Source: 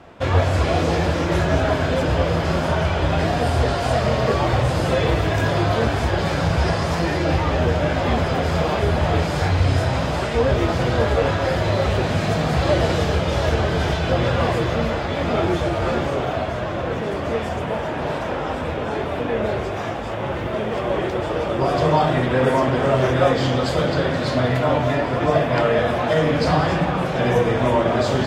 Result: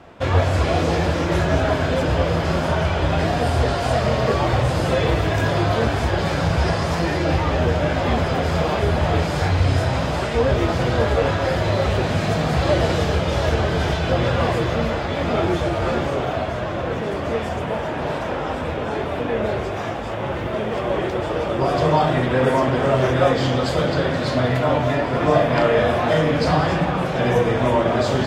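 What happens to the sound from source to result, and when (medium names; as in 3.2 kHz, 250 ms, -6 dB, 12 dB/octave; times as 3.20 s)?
25.11–26.21 s: doubling 37 ms -5 dB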